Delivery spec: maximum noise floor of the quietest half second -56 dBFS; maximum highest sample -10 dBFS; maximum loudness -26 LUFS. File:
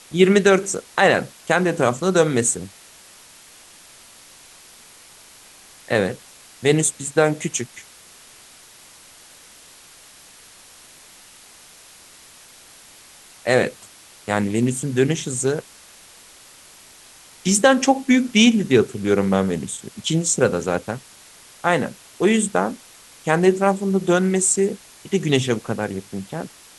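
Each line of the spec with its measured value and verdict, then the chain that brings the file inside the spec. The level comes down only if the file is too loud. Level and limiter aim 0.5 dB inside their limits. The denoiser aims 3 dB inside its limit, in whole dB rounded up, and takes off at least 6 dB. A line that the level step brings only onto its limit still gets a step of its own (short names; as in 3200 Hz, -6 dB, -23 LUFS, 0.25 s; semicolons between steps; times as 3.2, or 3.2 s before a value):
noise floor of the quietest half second -47 dBFS: fail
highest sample -3.0 dBFS: fail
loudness -20.0 LUFS: fail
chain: denoiser 6 dB, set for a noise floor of -47 dBFS; gain -6.5 dB; limiter -10.5 dBFS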